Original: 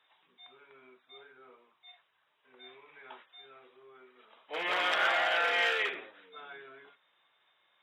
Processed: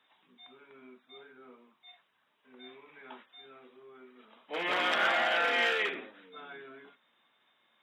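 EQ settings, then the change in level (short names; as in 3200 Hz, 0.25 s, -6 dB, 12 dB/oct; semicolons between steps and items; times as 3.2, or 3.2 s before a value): bell 230 Hz +14.5 dB 0.77 oct; 0.0 dB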